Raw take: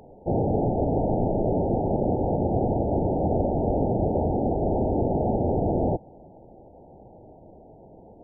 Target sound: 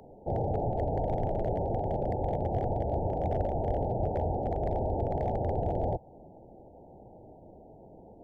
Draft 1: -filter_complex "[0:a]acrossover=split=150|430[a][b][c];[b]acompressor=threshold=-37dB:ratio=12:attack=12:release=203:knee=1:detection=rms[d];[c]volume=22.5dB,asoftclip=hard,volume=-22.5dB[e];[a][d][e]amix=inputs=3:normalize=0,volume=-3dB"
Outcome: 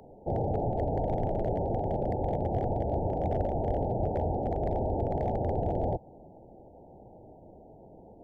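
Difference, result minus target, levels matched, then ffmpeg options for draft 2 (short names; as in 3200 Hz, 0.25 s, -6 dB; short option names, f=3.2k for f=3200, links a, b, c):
compressor: peak gain reduction -6 dB
-filter_complex "[0:a]acrossover=split=150|430[a][b][c];[b]acompressor=threshold=-43.5dB:ratio=12:attack=12:release=203:knee=1:detection=rms[d];[c]volume=22.5dB,asoftclip=hard,volume=-22.5dB[e];[a][d][e]amix=inputs=3:normalize=0,volume=-3dB"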